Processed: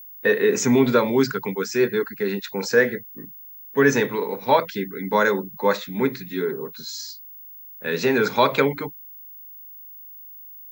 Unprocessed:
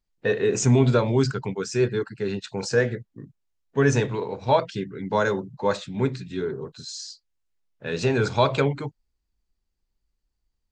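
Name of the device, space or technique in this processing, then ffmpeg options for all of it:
old television with a line whistle: -af "highpass=frequency=190:width=0.5412,highpass=frequency=190:width=1.3066,equalizer=frequency=340:width_type=q:width=4:gain=-4,equalizer=frequency=680:width_type=q:width=4:gain=-7,equalizer=frequency=2000:width_type=q:width=4:gain=6,equalizer=frequency=2900:width_type=q:width=4:gain=-5,equalizer=frequency=4800:width_type=q:width=4:gain=-3,lowpass=frequency=6600:width=0.5412,lowpass=frequency=6600:width=1.3066,aeval=exprs='val(0)+0.00631*sin(2*PI*15625*n/s)':channel_layout=same,volume=5dB"

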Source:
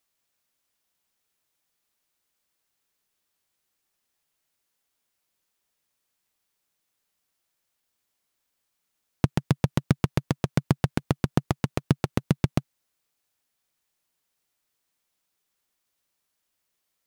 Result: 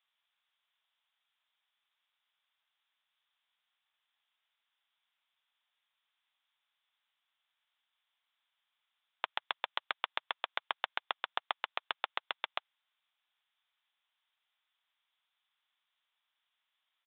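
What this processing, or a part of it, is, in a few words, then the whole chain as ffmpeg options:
musical greeting card: -af "aresample=8000,aresample=44100,highpass=frequency=830:width=0.5412,highpass=frequency=830:width=1.3066,equalizer=frequency=3400:width_type=o:width=0.3:gain=7"

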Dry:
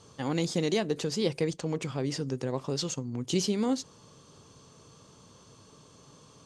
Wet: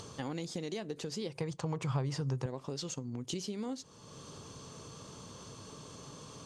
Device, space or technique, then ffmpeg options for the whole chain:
upward and downward compression: -filter_complex "[0:a]acompressor=mode=upward:threshold=-41dB:ratio=2.5,acompressor=threshold=-36dB:ratio=6,asettb=1/sr,asplit=3[link_01][link_02][link_03];[link_01]atrim=end=1.354[link_04];[link_02]atrim=start=1.35:end=2.46,asetpts=PTS-STARTPTS,afade=type=in:duration=0.004:curve=qsin,afade=type=out:start_time=1.106:duration=0.004:curve=qsin,equalizer=frequency=125:width_type=o:width=1:gain=12,equalizer=frequency=250:width_type=o:width=1:gain=-5,equalizer=frequency=1000:width_type=o:width=1:gain=10[link_05];[link_03]atrim=start=2.456[link_06];[link_04][link_05]acrossfade=duration=0.004:curve1=hsin:curve2=qsin[link_07];[link_07][link_06]acrossfade=duration=0.004:curve1=qsin:curve2=hsin"

